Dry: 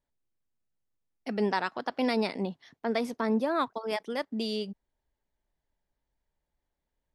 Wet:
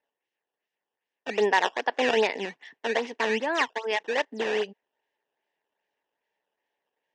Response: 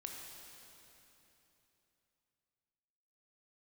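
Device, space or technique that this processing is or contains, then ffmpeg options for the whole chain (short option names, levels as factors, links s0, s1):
circuit-bent sampling toy: -filter_complex "[0:a]asettb=1/sr,asplit=3[s0][s1][s2];[s0]atrim=end=2.384[s3];[s1]atrim=start=2.38:end=4.06,asetpts=PTS-STARTPTS,afade=t=in:d=0.004:c=qsin,afade=t=out:st=1.676:d=0.004:c=qsin,equalizer=f=560:w=1.4:g=-6[s4];[s2]atrim=start=4.056[s5];[s3][s4]acrossfade=d=0.004:c1=hsin:c2=qsin[s6];[s6][s5]acrossfade=d=0.004:c1=qsin:c2=hsin,acrusher=samples=12:mix=1:aa=0.000001:lfo=1:lforange=19.2:lforate=2.5,highpass=430,equalizer=f=440:t=q:w=4:g=6,equalizer=f=880:t=q:w=4:g=4,equalizer=f=1300:t=q:w=4:g=-9,equalizer=f=1800:t=q:w=4:g=9,equalizer=f=2800:t=q:w=4:g=7,equalizer=f=4400:t=q:w=4:g=-6,lowpass=f=5700:w=0.5412,lowpass=f=5700:w=1.3066,volume=1.78"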